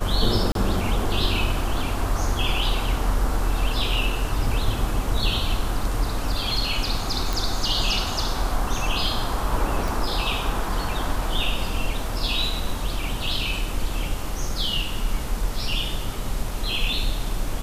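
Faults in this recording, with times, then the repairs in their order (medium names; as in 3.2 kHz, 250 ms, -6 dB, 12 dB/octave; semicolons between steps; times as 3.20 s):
0.52–0.55 s: dropout 32 ms
7.33 s: pop
9.88 s: pop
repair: de-click; interpolate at 0.52 s, 32 ms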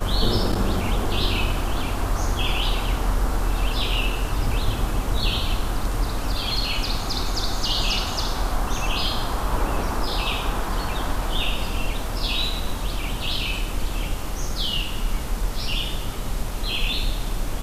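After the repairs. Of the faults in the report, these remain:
9.88 s: pop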